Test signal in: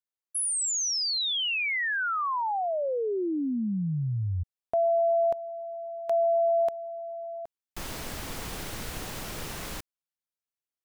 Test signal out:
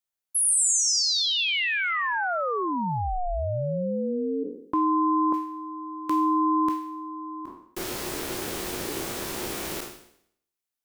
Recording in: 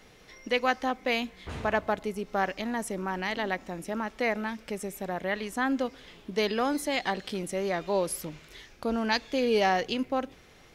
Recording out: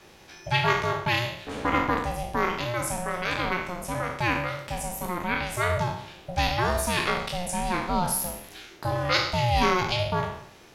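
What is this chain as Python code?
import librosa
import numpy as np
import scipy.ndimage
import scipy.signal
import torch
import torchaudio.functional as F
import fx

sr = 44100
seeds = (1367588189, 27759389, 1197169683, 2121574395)

y = fx.spec_trails(x, sr, decay_s=0.68)
y = fx.high_shelf(y, sr, hz=6400.0, db=4.0)
y = y * np.sin(2.0 * np.pi * 360.0 * np.arange(len(y)) / sr)
y = F.gain(torch.from_numpy(y), 4.0).numpy()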